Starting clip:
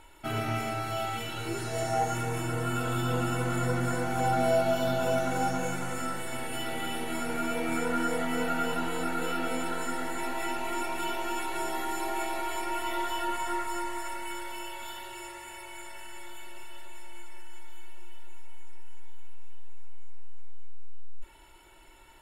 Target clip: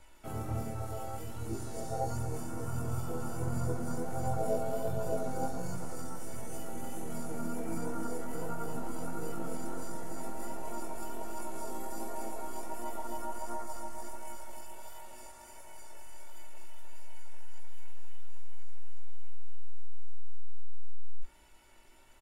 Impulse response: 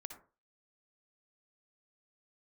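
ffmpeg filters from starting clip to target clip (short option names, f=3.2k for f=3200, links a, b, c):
-filter_complex "[0:a]bass=f=250:g=4,treble=f=4k:g=4,bandreject=f=50:t=h:w=6,bandreject=f=100:t=h:w=6,bandreject=f=150:t=h:w=6,bandreject=f=200:t=h:w=6,bandreject=f=250:t=h:w=6,bandreject=f=300:t=h:w=6,bandreject=f=350:t=h:w=6,acrossover=split=410|1200|7300[a][b][c][d];[c]acompressor=threshold=-55dB:ratio=6[e];[a][b][e][d]amix=inputs=4:normalize=0,flanger=delay=17:depth=3.7:speed=1.4,asplit=3[f][g][h];[g]asetrate=29433,aresample=44100,atempo=1.49831,volume=-5dB[i];[h]asetrate=37084,aresample=44100,atempo=1.18921,volume=-10dB[j];[f][i][j]amix=inputs=3:normalize=0,volume=-5dB"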